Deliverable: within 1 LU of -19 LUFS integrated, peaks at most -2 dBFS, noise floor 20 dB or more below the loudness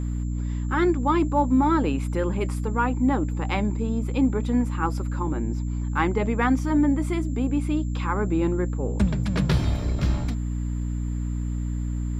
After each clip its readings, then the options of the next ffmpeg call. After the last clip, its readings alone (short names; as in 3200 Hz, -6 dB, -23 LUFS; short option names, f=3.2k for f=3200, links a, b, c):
hum 60 Hz; harmonics up to 300 Hz; hum level -25 dBFS; steady tone 7300 Hz; tone level -53 dBFS; loudness -25.0 LUFS; peak -9.0 dBFS; loudness target -19.0 LUFS
-> -af "bandreject=f=60:t=h:w=6,bandreject=f=120:t=h:w=6,bandreject=f=180:t=h:w=6,bandreject=f=240:t=h:w=6,bandreject=f=300:t=h:w=6"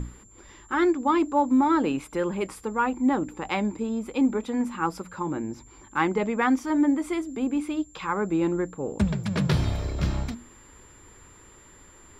hum none; steady tone 7300 Hz; tone level -53 dBFS
-> -af "bandreject=f=7.3k:w=30"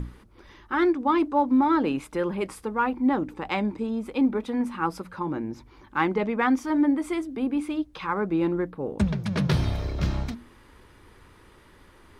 steady tone none; loudness -26.0 LUFS; peak -10.5 dBFS; loudness target -19.0 LUFS
-> -af "volume=7dB"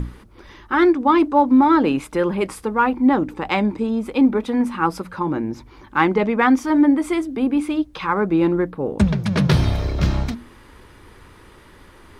loudness -19.0 LUFS; peak -3.5 dBFS; noise floor -47 dBFS